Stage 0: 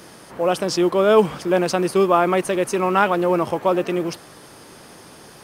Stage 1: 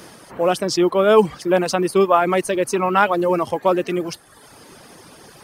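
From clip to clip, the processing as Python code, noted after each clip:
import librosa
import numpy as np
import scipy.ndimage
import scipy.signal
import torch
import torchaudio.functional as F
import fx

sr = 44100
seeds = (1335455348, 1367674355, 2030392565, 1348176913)

y = fx.dereverb_blind(x, sr, rt60_s=0.93)
y = F.gain(torch.from_numpy(y), 2.0).numpy()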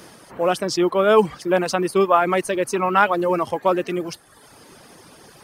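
y = fx.dynamic_eq(x, sr, hz=1500.0, q=0.8, threshold_db=-27.0, ratio=4.0, max_db=3)
y = F.gain(torch.from_numpy(y), -2.5).numpy()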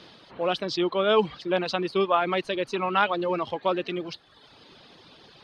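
y = fx.curve_eq(x, sr, hz=(1900.0, 3900.0, 5700.0, 10000.0), db=(0, 12, -6, -23))
y = F.gain(torch.from_numpy(y), -6.5).numpy()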